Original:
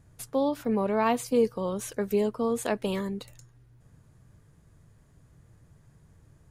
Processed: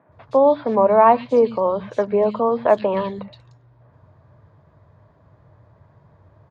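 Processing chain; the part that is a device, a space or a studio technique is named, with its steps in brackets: guitar cabinet (cabinet simulation 86–3800 Hz, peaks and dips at 95 Hz +6 dB, 610 Hz +10 dB, 1 kHz +7 dB, 2.9 kHz -4 dB); peaking EQ 910 Hz +4 dB 1.1 oct; three bands offset in time mids, lows, highs 90/120 ms, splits 190/2800 Hz; trim +5.5 dB

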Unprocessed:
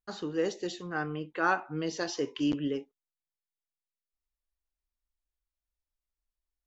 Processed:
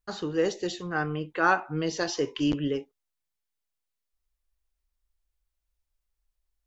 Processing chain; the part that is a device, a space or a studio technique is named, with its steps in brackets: low shelf boost with a cut just above (bass shelf 110 Hz +7 dB; peaking EQ 250 Hz -4 dB 0.71 oct); trim +4.5 dB

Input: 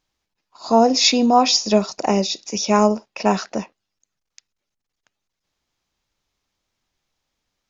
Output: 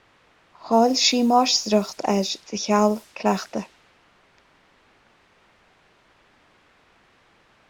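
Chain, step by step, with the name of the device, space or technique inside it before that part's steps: cassette deck with a dynamic noise filter (white noise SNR 24 dB; level-controlled noise filter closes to 1.9 kHz, open at -15.5 dBFS); trim -3 dB

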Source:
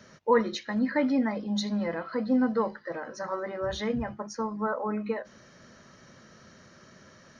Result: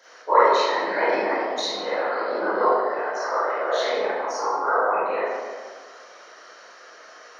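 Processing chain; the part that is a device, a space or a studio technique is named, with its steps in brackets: whispering ghost (whisper effect; high-pass 480 Hz 24 dB/octave; reverberation RT60 1.6 s, pre-delay 26 ms, DRR -11 dB); 2.09–2.99 s: elliptic band-pass 170–5000 Hz

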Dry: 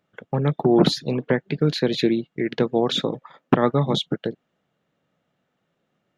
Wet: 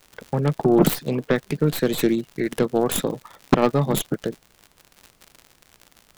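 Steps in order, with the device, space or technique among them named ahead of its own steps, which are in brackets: record under a worn stylus (tracing distortion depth 0.29 ms; crackle 92 per s -31 dBFS; pink noise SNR 38 dB)

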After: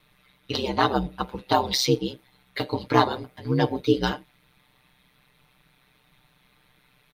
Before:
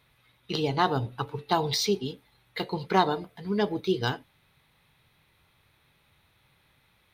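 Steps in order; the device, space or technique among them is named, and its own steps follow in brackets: ring-modulated robot voice (ring modulator 64 Hz; comb 6.7 ms); trim +5 dB

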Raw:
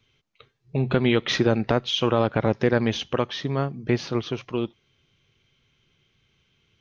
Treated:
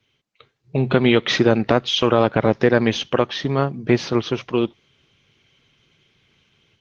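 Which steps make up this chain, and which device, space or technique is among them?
video call (high-pass 130 Hz 6 dB/octave; level rider gain up to 7.5 dB; trim +1 dB; Opus 16 kbps 48 kHz)

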